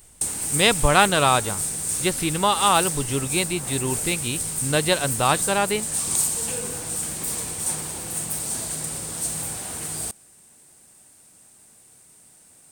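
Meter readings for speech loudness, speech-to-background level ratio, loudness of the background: −22.0 LKFS, 3.0 dB, −25.0 LKFS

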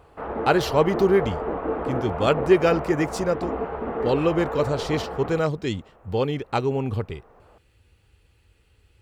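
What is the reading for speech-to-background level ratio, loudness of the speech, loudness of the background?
6.0 dB, −24.0 LKFS, −30.0 LKFS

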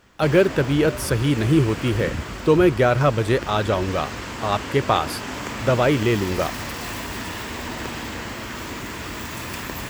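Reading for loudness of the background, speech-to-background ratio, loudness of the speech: −31.0 LKFS, 10.0 dB, −21.0 LKFS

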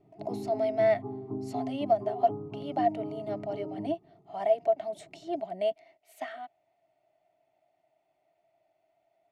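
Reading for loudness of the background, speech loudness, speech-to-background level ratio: −39.0 LKFS, −31.0 LKFS, 8.0 dB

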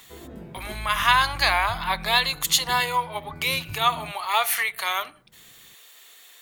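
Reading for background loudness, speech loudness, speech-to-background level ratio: −40.0 LKFS, −22.5 LKFS, 17.5 dB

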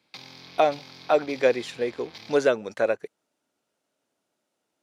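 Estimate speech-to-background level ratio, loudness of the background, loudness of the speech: 19.5 dB, −45.0 LKFS, −25.5 LKFS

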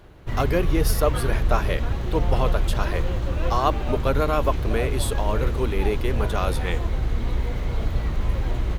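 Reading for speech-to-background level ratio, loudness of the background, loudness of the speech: 0.0 dB, −27.0 LKFS, −27.0 LKFS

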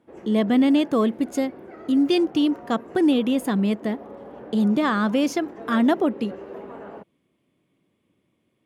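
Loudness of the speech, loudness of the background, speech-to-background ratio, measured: −22.0 LKFS, −40.5 LKFS, 18.5 dB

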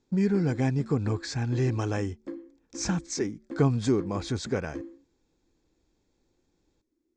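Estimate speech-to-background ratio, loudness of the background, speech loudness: 14.5 dB, −43.0 LKFS, −28.5 LKFS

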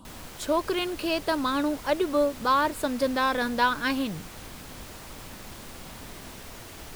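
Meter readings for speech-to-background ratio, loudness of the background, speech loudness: 16.0 dB, −42.5 LKFS, −26.5 LKFS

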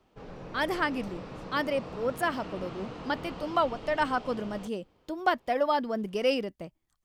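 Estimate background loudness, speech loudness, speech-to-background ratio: −43.0 LKFS, −31.0 LKFS, 12.0 dB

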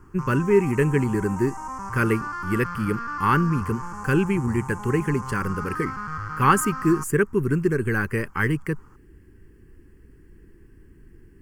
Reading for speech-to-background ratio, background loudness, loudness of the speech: 9.0 dB, −33.0 LKFS, −24.0 LKFS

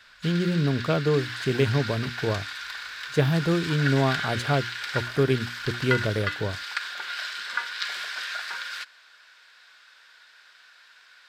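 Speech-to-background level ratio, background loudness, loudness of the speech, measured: 6.0 dB, −32.0 LKFS, −26.0 LKFS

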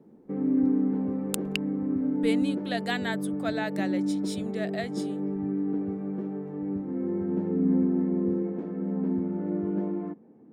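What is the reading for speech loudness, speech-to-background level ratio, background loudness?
−34.0 LKFS, −5.0 dB, −29.0 LKFS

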